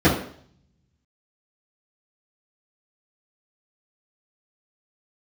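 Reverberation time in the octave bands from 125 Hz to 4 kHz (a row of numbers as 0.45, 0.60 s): 1.1, 0.60, 0.60, 0.55, 0.55, 0.60 s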